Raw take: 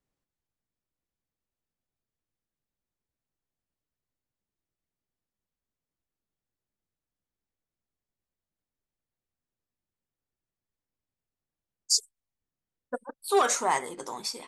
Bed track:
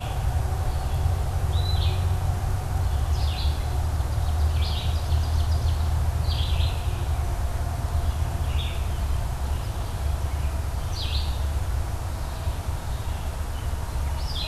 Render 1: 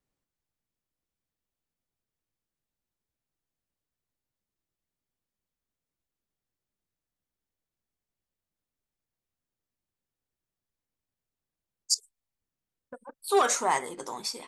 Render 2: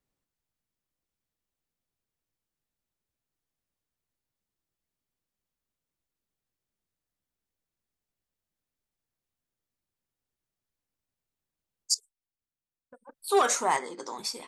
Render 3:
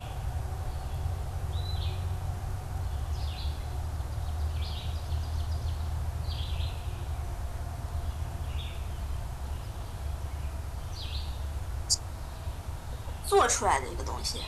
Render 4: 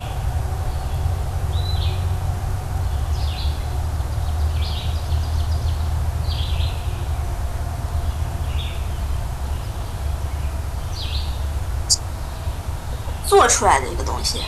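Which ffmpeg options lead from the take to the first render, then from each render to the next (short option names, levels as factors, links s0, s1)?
-filter_complex "[0:a]asettb=1/sr,asplit=3[s0][s1][s2];[s0]atrim=end=11.944[s3];[s1]atrim=start=11.94:end=13.27,asetpts=PTS-STARTPTS,afade=t=in:d=0.004:c=qsin,afade=t=out:st=1.326:d=0.004:c=qsin,acompressor=threshold=0.0126:ratio=8:attack=3.2:release=140:knee=1:detection=peak[s4];[s2]atrim=start=13.266[s5];[s3][s4]acrossfade=d=0.004:c1=hsin:c2=qsin[s6];[s6][s5]acrossfade=d=0.004:c1=qsin:c2=hsin"
-filter_complex "[0:a]asplit=3[s0][s1][s2];[s0]afade=t=out:st=13.76:d=0.02[s3];[s1]highpass=f=190:w=0.5412,highpass=f=190:w=1.3066,equalizer=f=690:t=q:w=4:g=-4,equalizer=f=2800:t=q:w=4:g=-6,equalizer=f=4700:t=q:w=4:g=7,lowpass=f=7100:w=0.5412,lowpass=f=7100:w=1.3066,afade=t=in:st=13.76:d=0.02,afade=t=out:st=14.17:d=0.02[s4];[s2]afade=t=in:st=14.17:d=0.02[s5];[s3][s4][s5]amix=inputs=3:normalize=0,asplit=3[s6][s7][s8];[s6]atrim=end=12.05,asetpts=PTS-STARTPTS,afade=t=out:st=11.91:d=0.14:silence=0.354813[s9];[s7]atrim=start=12.05:end=13.04,asetpts=PTS-STARTPTS,volume=0.355[s10];[s8]atrim=start=13.04,asetpts=PTS-STARTPTS,afade=t=in:d=0.14:silence=0.354813[s11];[s9][s10][s11]concat=n=3:v=0:a=1"
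-filter_complex "[1:a]volume=0.355[s0];[0:a][s0]amix=inputs=2:normalize=0"
-af "volume=3.55,alimiter=limit=0.708:level=0:latency=1"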